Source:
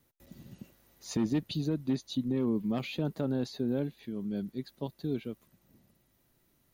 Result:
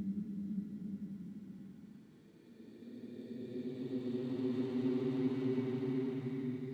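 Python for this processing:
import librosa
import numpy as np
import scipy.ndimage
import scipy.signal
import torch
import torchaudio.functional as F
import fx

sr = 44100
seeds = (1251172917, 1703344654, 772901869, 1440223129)

y = np.minimum(x, 2.0 * 10.0 ** (-26.5 / 20.0) - x)
y = fx.weighting(y, sr, curve='A')
y = fx.dmg_noise_colour(y, sr, seeds[0], colour='blue', level_db=-68.0)
y = fx.riaa(y, sr, side='playback')
y = fx.paulstretch(y, sr, seeds[1], factor=40.0, window_s=0.1, from_s=4.46)
y = fx.running_max(y, sr, window=3)
y = F.gain(torch.from_numpy(y), 1.0).numpy()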